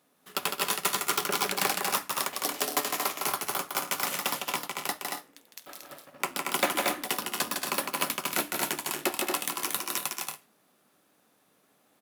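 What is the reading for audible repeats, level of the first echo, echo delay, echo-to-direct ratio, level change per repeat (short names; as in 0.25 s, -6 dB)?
3, -4.5 dB, 0.157 s, -1.0 dB, no steady repeat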